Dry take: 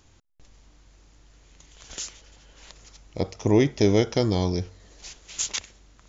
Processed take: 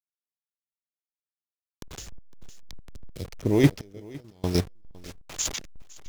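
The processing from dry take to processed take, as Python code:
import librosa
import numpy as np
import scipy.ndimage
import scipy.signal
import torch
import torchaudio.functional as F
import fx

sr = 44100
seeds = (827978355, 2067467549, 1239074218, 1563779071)

p1 = fx.delta_hold(x, sr, step_db=-33.0)
p2 = fx.gate_flip(p1, sr, shuts_db=-23.0, range_db=-30, at=(3.8, 4.44))
p3 = fx.rotary_switch(p2, sr, hz=5.5, then_hz=1.2, switch_at_s=2.84)
p4 = fx.chopper(p3, sr, hz=3.3, depth_pct=65, duty_pct=20)
p5 = p4 + fx.echo_single(p4, sr, ms=508, db=-22.0, dry=0)
p6 = fx.band_squash(p5, sr, depth_pct=70, at=(1.98, 3.25))
y = p6 * 10.0 ** (8.5 / 20.0)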